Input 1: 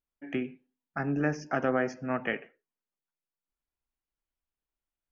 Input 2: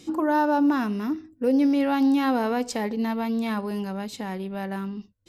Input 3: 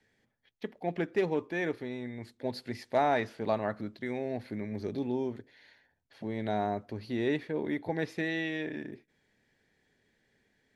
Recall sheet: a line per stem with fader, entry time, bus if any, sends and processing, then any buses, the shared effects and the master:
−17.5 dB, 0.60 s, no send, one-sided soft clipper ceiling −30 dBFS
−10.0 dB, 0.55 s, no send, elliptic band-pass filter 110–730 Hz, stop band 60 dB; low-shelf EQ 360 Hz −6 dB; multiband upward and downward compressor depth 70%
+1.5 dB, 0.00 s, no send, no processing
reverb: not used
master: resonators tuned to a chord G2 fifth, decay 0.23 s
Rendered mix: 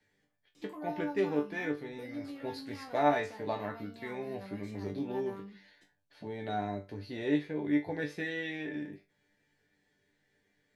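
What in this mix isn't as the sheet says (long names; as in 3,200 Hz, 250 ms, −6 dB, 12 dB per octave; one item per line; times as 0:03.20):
stem 2: missing elliptic band-pass filter 110–730 Hz, stop band 60 dB
stem 3 +1.5 dB → +8.0 dB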